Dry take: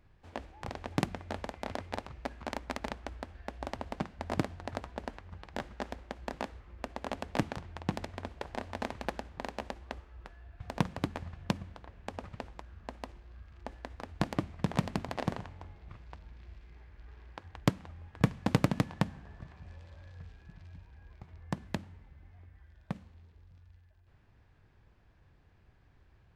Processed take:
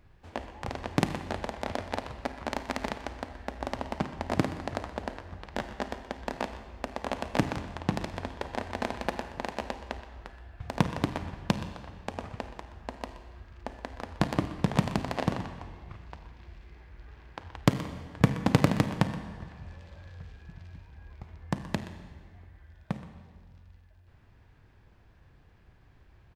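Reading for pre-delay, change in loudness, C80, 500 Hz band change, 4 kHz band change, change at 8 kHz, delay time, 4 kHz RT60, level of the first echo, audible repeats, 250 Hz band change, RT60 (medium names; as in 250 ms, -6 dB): 33 ms, +5.0 dB, 10.0 dB, +5.0 dB, +5.0 dB, +5.0 dB, 124 ms, 1.4 s, -15.0 dB, 1, +5.0 dB, 1.6 s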